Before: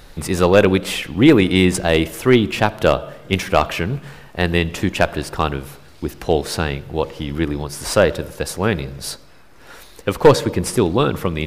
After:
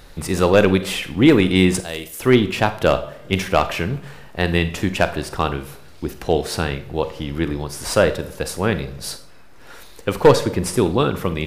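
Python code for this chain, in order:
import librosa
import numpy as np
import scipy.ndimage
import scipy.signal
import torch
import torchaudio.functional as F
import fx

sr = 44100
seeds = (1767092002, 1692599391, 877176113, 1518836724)

y = fx.pre_emphasis(x, sr, coefficient=0.8, at=(1.8, 2.2))
y = fx.rev_schroeder(y, sr, rt60_s=0.39, comb_ms=32, drr_db=11.5)
y = F.gain(torch.from_numpy(y), -1.5).numpy()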